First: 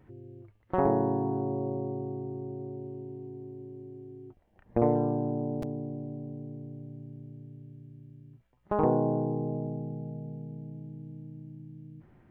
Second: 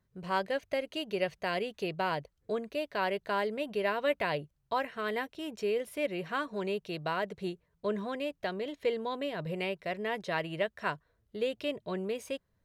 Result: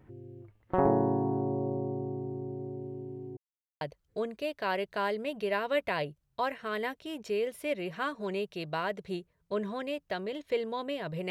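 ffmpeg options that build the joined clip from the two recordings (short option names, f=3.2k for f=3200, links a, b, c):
-filter_complex "[0:a]apad=whole_dur=11.3,atrim=end=11.3,asplit=2[a][b];[a]atrim=end=3.37,asetpts=PTS-STARTPTS,afade=t=out:st=3.366:d=0.004:c=hsin[c];[b]atrim=start=3.37:end=3.81,asetpts=PTS-STARTPTS,volume=0[d];[1:a]atrim=start=2.14:end=9.63,asetpts=PTS-STARTPTS,afade=t=in:d=0.004:c=hsin[e];[c][d][e]concat=n=3:v=0:a=1"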